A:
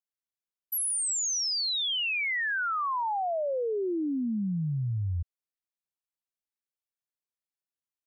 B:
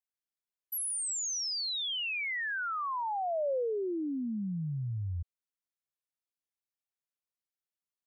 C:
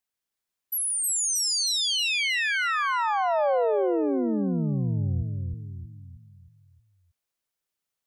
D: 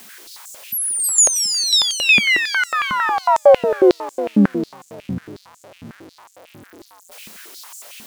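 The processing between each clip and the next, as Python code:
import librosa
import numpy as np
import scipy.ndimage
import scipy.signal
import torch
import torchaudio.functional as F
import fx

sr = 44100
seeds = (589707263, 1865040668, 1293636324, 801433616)

y1 = fx.dynamic_eq(x, sr, hz=550.0, q=1.9, threshold_db=-41.0, ratio=4.0, max_db=4)
y1 = F.gain(torch.from_numpy(y1), -5.0).numpy()
y2 = fx.echo_feedback(y1, sr, ms=315, feedback_pct=46, wet_db=-4.0)
y2 = F.gain(torch.from_numpy(y2), 7.0).numpy()
y3 = y2 + 0.5 * 10.0 ** (-38.0 / 20.0) * np.sign(y2)
y3 = fx.filter_held_highpass(y3, sr, hz=11.0, low_hz=210.0, high_hz=7200.0)
y3 = F.gain(torch.from_numpy(y3), 4.5).numpy()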